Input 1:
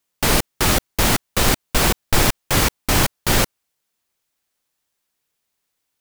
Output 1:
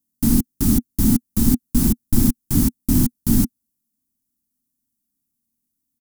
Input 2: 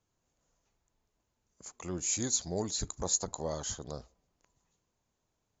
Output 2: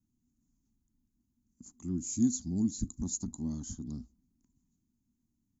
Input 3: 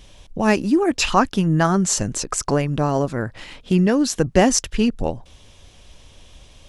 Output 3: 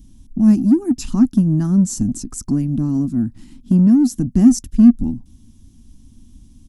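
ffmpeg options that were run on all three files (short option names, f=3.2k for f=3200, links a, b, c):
-filter_complex "[0:a]firequalizer=gain_entry='entry(160,0);entry(240,12);entry(490,-30);entry(820,-20);entry(2400,-24);entry(5500,-11);entry(11000,-2)':delay=0.05:min_phase=1,asplit=2[a][b];[b]asoftclip=type=tanh:threshold=-18dB,volume=-10.5dB[c];[a][c]amix=inputs=2:normalize=0"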